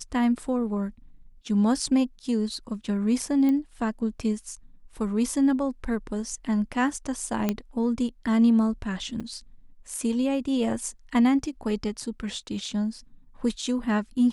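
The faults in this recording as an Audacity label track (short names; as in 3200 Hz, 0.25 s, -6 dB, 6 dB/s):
3.490000	3.490000	pop -17 dBFS
7.490000	7.490000	pop -11 dBFS
9.200000	9.210000	gap 5.5 ms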